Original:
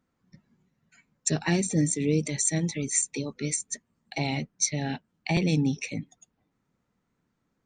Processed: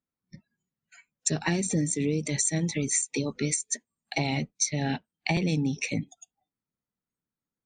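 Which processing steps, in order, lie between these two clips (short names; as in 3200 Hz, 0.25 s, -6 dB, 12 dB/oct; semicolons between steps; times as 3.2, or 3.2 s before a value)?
spectral noise reduction 23 dB; compressor, threshold -29 dBFS, peak gain reduction 9.5 dB; gain +5.5 dB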